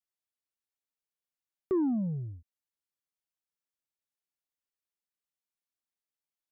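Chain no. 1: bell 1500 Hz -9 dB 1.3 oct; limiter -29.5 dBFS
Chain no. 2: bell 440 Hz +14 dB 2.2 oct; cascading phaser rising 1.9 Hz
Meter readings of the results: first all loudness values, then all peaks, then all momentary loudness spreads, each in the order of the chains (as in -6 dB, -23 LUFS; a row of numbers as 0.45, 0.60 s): -35.5, -20.5 LUFS; -29.5, -9.5 dBFS; 12, 17 LU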